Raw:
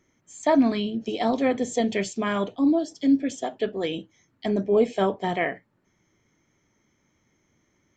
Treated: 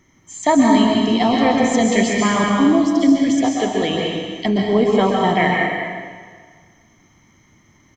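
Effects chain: comb 1 ms, depth 42%; in parallel at +1 dB: compressor, threshold -30 dBFS, peak gain reduction 15 dB; on the sum: plate-style reverb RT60 1.7 s, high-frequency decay 0.95×, pre-delay 0.115 s, DRR -1.5 dB; gain +3 dB

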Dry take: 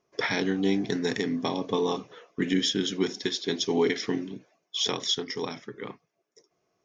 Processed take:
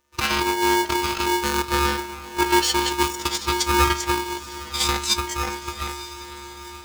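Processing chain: gliding pitch shift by +5.5 st starting unshifted; robotiser 285 Hz; on a send: diffused feedback echo 0.9 s, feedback 50%, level -14 dB; on the sum: polarity switched at an audio rate 640 Hz; gain +8 dB

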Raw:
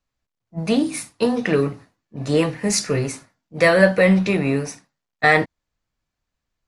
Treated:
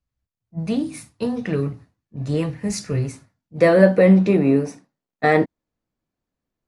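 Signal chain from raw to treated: bell 77 Hz +14.5 dB 2.9 oct, from 3.61 s 300 Hz; gain -9 dB

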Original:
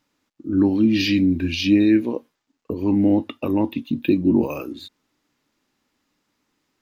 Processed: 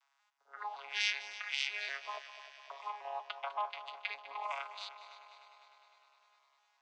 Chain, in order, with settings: arpeggiated vocoder bare fifth, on C#3, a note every 0.188 s; steep high-pass 780 Hz 48 dB/oct; notch 4300 Hz, Q 28; in parallel at +1 dB: compressor, threshold -51 dBFS, peak gain reduction 19.5 dB; on the sum: multi-head echo 0.101 s, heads second and third, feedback 66%, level -15 dB; gain +1 dB

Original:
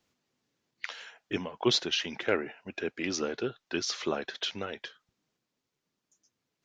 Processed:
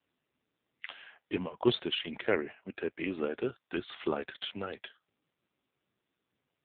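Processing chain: 0.86–2.24 low shelf 82 Hz +9 dB; AMR-NB 5.9 kbps 8000 Hz

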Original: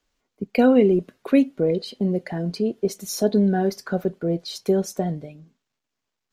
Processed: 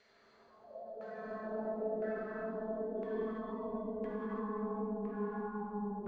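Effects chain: nonlinear frequency compression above 2100 Hz 1.5:1; low shelf 260 Hz -10 dB; thinning echo 0.14 s, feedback 45%, high-pass 380 Hz, level -7 dB; compressor 6:1, threshold -26 dBFS, peak gain reduction 12 dB; tube stage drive 45 dB, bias 0.4; Paulstretch 19×, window 0.25 s, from 3.14; spectral noise reduction 18 dB; LFO low-pass saw down 0.95 Hz 420–1900 Hz; non-linear reverb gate 0.38 s flat, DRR -3.5 dB; speed mistake 24 fps film run at 25 fps; ending taper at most 110 dB/s; gain +2 dB

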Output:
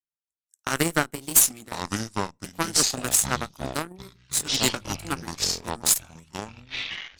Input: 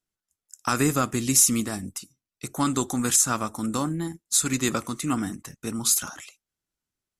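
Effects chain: repeated pitch sweeps +3 st, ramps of 1.41 s; harmonic-percussive split harmonic -3 dB; added harmonics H 2 -14 dB, 3 -36 dB, 7 -18 dB, 8 -38 dB, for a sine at -8 dBFS; echoes that change speed 0.718 s, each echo -7 st, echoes 3, each echo -6 dB; gain +4.5 dB

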